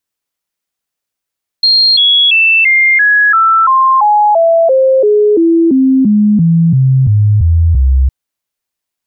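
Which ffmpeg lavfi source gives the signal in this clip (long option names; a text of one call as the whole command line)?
ffmpeg -f lavfi -i "aevalsrc='0.562*clip(min(mod(t,0.34),0.34-mod(t,0.34))/0.005,0,1)*sin(2*PI*4220*pow(2,-floor(t/0.34)/3)*mod(t,0.34))':duration=6.46:sample_rate=44100" out.wav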